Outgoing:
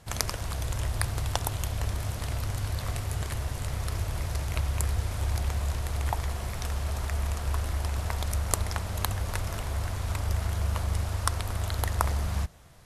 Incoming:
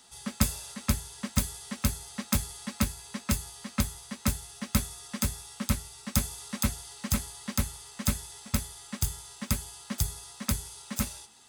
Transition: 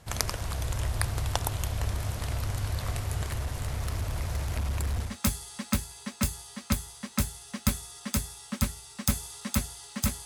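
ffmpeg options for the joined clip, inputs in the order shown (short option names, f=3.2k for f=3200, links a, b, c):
-filter_complex "[0:a]asettb=1/sr,asplit=3[a][b][c];[a]atrim=end=3.244[d];[b]atrim=start=3.24:end=5.17,asetpts=PTS-STARTPTS,afade=t=in:d=0.004:c=qsin,afade=t=out:st=1.926:d=0.004:c=qsin,asoftclip=type=hard:threshold=-25.5dB[e];[c]atrim=start=5.166[f];[d][e]acrossfade=d=0.004:c1=hsin:c2=qsin[g];[g][f]acrossfade=d=0.004:c1=qsin:c2=hsin,apad=whole_dur=10.25,atrim=end=10.25,atrim=end=5.17,asetpts=PTS-STARTPTS[h];[1:a]atrim=start=2.09:end=7.33,asetpts=PTS-STARTPTS[i];[h][i]acrossfade=d=0.16:c1=tri:c2=tri"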